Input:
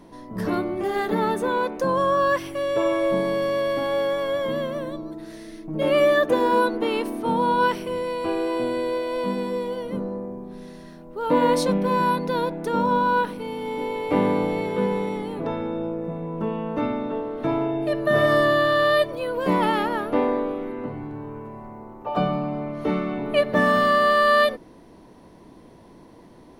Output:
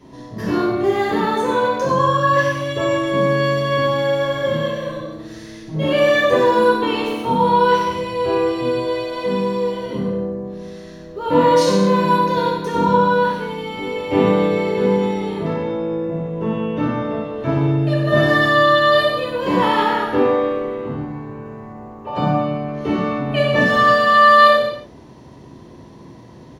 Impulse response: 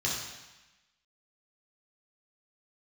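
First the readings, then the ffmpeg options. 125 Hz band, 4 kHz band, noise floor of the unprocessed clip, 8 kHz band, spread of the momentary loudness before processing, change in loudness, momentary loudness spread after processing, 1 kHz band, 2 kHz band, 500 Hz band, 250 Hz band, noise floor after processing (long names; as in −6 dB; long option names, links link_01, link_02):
+9.5 dB, +7.0 dB, −48 dBFS, +5.5 dB, 15 LU, +5.5 dB, 15 LU, +6.5 dB, +6.5 dB, +4.5 dB, +5.0 dB, −40 dBFS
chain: -filter_complex "[0:a]asplit=2[link_01][link_02];[link_02]adelay=93.29,volume=-7dB,highshelf=frequency=4000:gain=-2.1[link_03];[link_01][link_03]amix=inputs=2:normalize=0[link_04];[1:a]atrim=start_sample=2205,afade=type=out:start_time=0.33:duration=0.01,atrim=end_sample=14994[link_05];[link_04][link_05]afir=irnorm=-1:irlink=0,volume=-2.5dB"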